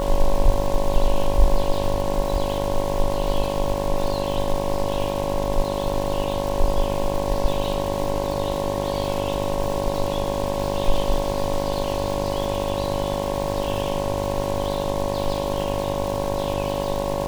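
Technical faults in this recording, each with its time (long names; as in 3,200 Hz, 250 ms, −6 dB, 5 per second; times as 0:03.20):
mains buzz 50 Hz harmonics 22 −27 dBFS
surface crackle 590 per second −29 dBFS
whistle 560 Hz −26 dBFS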